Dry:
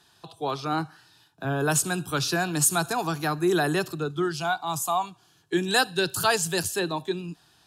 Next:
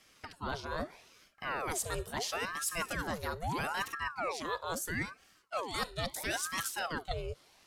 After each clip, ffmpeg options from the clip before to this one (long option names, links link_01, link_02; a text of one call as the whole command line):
ffmpeg -i in.wav -af "areverse,acompressor=threshold=-30dB:ratio=6,areverse,aeval=exprs='val(0)*sin(2*PI*860*n/s+860*0.75/0.76*sin(2*PI*0.76*n/s))':channel_layout=same" out.wav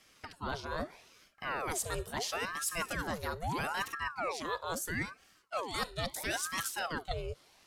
ffmpeg -i in.wav -af anull out.wav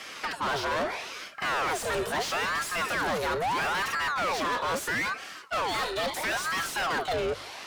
ffmpeg -i in.wav -filter_complex "[0:a]asplit=2[link_01][link_02];[link_02]highpass=frequency=720:poles=1,volume=36dB,asoftclip=type=tanh:threshold=-18dB[link_03];[link_01][link_03]amix=inputs=2:normalize=0,lowpass=frequency=2500:poles=1,volume=-6dB,bandreject=frequency=49.2:width_type=h:width=4,bandreject=frequency=98.4:width_type=h:width=4,bandreject=frequency=147.6:width_type=h:width=4,volume=-2.5dB" out.wav